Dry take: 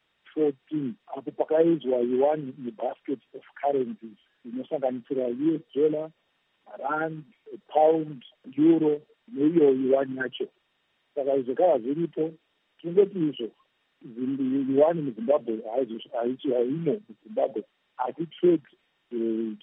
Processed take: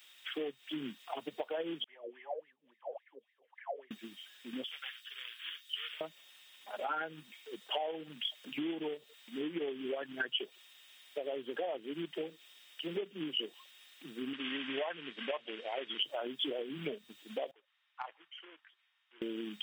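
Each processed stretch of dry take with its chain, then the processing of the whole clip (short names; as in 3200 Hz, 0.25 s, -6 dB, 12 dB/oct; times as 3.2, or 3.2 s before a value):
1.84–3.91 wah 3.6 Hz 460–2100 Hz, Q 15 + bell 1400 Hz -12 dB 0.4 oct + dispersion lows, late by 47 ms, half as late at 1300 Hz
4.64–6.01 inverse Chebyshev high-pass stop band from 710 Hz + bell 2100 Hz -4 dB 0.57 oct
14.33–16 LPF 2700 Hz + tilt shelf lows -10 dB, about 790 Hz
17.51–19.22 compressor, threshold -21 dBFS + ladder band-pass 1400 Hz, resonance 25% + tube stage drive 26 dB, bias 0.35
whole clip: tilt +4 dB/oct; compressor 5:1, threshold -38 dBFS; high shelf 2600 Hz +12 dB; gain +1 dB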